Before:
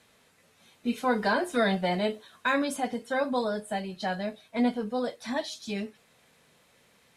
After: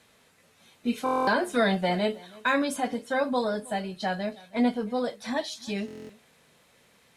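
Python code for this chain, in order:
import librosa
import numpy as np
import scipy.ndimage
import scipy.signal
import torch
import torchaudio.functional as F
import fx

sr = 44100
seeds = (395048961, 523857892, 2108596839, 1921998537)

y = x + 10.0 ** (-22.5 / 20.0) * np.pad(x, (int(319 * sr / 1000.0), 0))[:len(x)]
y = fx.buffer_glitch(y, sr, at_s=(1.04, 5.86), block=1024, repeats=9)
y = y * librosa.db_to_amplitude(1.5)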